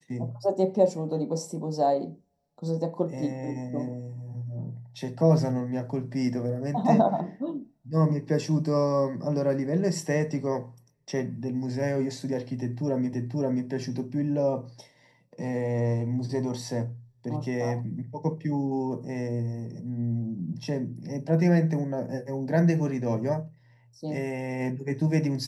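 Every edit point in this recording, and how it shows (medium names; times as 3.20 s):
13.13 s: repeat of the last 0.53 s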